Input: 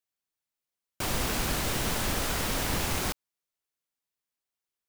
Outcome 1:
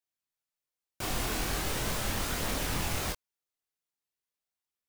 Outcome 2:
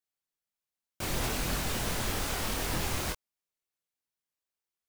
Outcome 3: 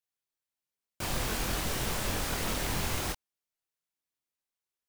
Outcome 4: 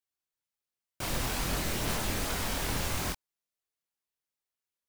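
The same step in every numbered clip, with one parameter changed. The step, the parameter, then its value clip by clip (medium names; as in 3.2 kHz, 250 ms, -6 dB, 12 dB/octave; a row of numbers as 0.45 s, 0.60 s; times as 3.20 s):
chorus, rate: 0.2 Hz, 2 Hz, 3 Hz, 1.3 Hz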